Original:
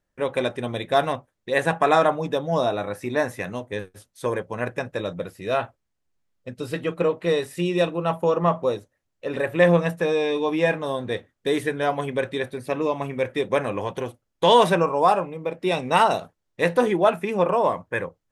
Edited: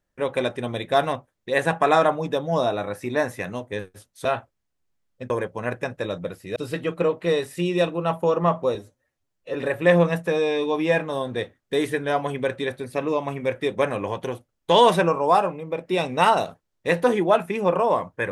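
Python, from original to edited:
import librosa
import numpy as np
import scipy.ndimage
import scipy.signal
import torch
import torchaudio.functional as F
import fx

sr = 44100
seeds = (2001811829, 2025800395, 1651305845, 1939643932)

y = fx.edit(x, sr, fx.move(start_s=5.51, length_s=1.05, to_s=4.25),
    fx.stretch_span(start_s=8.75, length_s=0.53, factor=1.5), tone=tone)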